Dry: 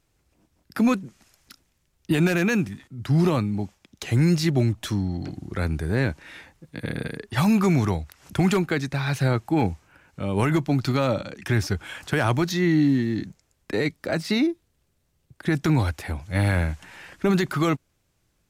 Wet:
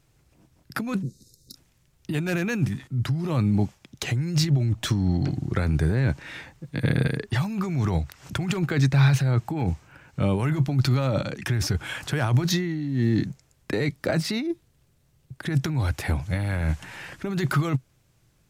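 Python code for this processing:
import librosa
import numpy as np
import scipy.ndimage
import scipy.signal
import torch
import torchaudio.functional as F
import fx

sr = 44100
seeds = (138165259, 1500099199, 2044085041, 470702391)

y = fx.spec_box(x, sr, start_s=1.03, length_s=0.52, low_hz=550.0, high_hz=3600.0, gain_db=-29)
y = fx.peak_eq(y, sr, hz=11000.0, db=-10.5, octaves=0.21, at=(4.04, 10.22))
y = fx.over_compress(y, sr, threshold_db=-26.0, ratio=-1.0)
y = fx.peak_eq(y, sr, hz=130.0, db=9.0, octaves=0.5)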